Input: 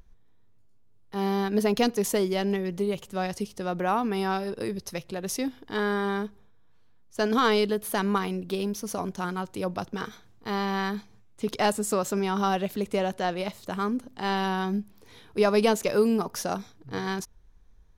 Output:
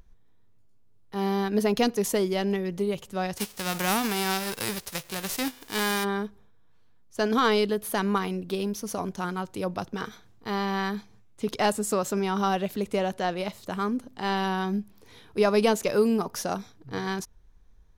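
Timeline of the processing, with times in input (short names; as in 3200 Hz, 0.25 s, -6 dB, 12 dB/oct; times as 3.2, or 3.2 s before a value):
3.36–6.03 spectral whitening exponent 0.3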